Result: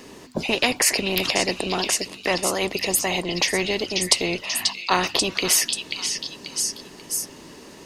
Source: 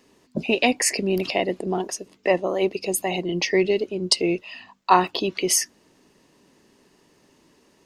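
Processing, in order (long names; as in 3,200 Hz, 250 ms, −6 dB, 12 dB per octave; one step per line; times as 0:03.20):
on a send: echo through a band-pass that steps 537 ms, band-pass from 3,800 Hz, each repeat 0.7 octaves, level −5 dB
on the sum: every bin compressed towards the loudest bin 2 to 1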